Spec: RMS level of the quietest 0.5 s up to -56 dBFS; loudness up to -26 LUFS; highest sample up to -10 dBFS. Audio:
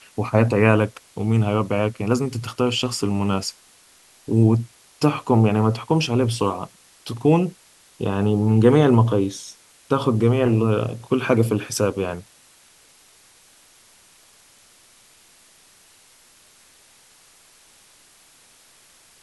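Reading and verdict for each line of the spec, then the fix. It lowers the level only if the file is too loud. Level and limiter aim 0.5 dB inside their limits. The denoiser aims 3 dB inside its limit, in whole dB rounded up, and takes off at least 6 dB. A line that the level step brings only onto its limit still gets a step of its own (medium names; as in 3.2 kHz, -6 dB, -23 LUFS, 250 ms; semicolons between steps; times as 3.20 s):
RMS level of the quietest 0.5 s -53 dBFS: fail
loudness -20.5 LUFS: fail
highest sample -2.0 dBFS: fail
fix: trim -6 dB; peak limiter -10.5 dBFS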